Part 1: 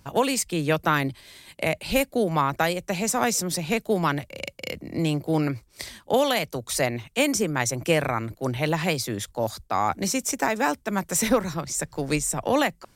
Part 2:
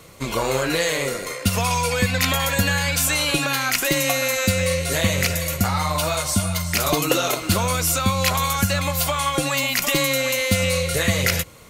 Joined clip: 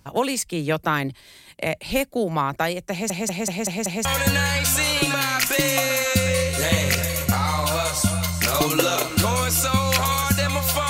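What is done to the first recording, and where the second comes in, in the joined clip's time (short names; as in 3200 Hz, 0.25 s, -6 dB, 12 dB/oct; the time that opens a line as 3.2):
part 1
2.91 stutter in place 0.19 s, 6 plays
4.05 switch to part 2 from 2.37 s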